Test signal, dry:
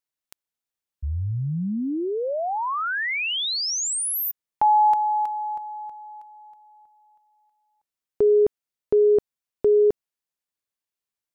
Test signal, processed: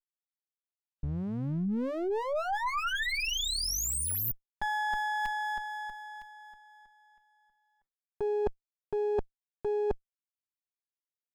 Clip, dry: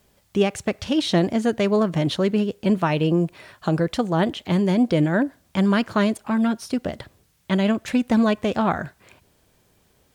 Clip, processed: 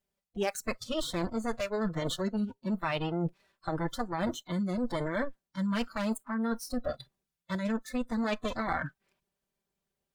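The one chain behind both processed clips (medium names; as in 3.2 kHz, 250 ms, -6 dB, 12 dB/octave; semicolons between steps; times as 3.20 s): comb filter that takes the minimum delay 5.1 ms; spectral noise reduction 23 dB; reverse; compression 10:1, threshold -28 dBFS; reverse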